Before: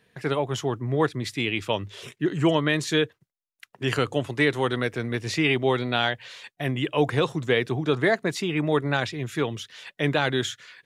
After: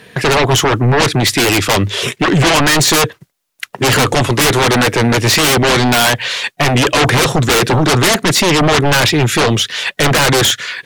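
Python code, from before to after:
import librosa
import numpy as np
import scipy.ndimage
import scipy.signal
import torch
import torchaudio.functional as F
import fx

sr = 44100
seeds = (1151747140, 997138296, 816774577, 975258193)

p1 = fx.low_shelf(x, sr, hz=64.0, db=-10.5)
p2 = fx.fold_sine(p1, sr, drive_db=19, ceiling_db=-9.0)
p3 = p1 + F.gain(torch.from_numpy(p2), -4.0).numpy()
y = F.gain(torch.from_numpy(p3), 4.0).numpy()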